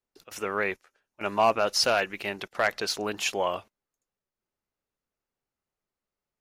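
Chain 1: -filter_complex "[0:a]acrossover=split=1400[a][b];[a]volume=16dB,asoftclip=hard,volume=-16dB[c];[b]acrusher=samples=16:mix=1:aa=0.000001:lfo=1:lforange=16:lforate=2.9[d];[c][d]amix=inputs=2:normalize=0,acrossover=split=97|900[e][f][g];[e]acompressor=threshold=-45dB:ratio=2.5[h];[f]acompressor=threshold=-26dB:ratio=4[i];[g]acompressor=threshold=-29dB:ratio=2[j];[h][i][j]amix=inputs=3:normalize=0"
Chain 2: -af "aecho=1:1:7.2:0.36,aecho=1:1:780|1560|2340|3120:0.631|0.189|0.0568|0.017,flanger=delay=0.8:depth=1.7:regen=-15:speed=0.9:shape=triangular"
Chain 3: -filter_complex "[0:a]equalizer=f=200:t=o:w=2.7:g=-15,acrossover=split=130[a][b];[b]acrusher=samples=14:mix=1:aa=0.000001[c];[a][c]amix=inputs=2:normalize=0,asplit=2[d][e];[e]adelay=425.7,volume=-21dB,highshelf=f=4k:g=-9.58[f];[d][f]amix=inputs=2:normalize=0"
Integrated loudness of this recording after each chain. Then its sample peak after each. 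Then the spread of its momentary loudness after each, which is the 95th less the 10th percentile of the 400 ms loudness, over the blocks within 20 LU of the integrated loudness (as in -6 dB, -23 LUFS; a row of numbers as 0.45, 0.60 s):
-30.5, -29.5, -30.5 LUFS; -11.5, -12.0, -13.0 dBFS; 10, 20, 13 LU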